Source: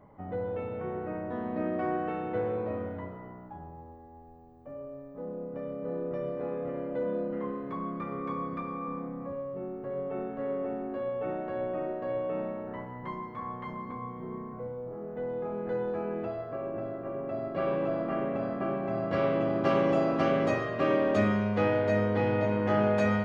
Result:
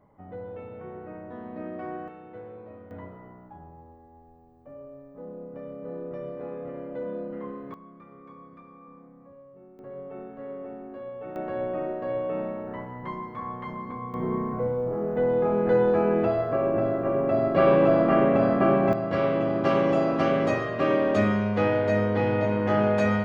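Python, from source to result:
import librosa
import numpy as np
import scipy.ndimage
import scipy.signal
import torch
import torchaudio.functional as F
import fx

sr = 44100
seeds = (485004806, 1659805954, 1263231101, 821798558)

y = fx.gain(x, sr, db=fx.steps((0.0, -5.0), (2.08, -11.5), (2.91, -2.0), (7.74, -13.5), (9.79, -5.0), (11.36, 3.0), (14.14, 11.0), (18.93, 3.0)))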